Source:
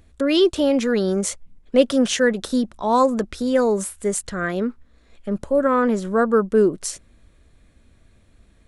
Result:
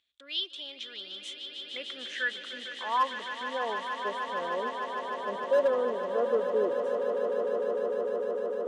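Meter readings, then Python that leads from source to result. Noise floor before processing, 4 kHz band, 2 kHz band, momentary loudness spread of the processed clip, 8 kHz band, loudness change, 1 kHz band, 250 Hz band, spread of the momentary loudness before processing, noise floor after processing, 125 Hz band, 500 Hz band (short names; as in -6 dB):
-55 dBFS, -4.5 dB, -5.5 dB, 11 LU, under -20 dB, -10.5 dB, -6.0 dB, -23.5 dB, 11 LU, -47 dBFS, under -20 dB, -8.5 dB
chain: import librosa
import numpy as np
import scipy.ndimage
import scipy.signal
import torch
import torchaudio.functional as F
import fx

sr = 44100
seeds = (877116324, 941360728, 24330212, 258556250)

y = fx.filter_sweep_bandpass(x, sr, from_hz=3400.0, to_hz=550.0, start_s=0.89, end_s=4.32, q=5.0)
y = np.clip(y, -10.0 ** (-16.5 / 20.0), 10.0 ** (-16.5 / 20.0))
y = fx.echo_swell(y, sr, ms=151, loudest=8, wet_db=-10.5)
y = F.gain(torch.from_numpy(y), -3.0).numpy()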